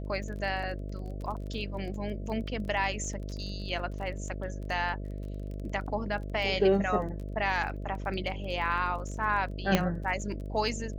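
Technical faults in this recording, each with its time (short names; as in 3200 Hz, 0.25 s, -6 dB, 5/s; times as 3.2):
buzz 50 Hz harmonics 13 -37 dBFS
crackle 20/s -38 dBFS
9.75 pop -9 dBFS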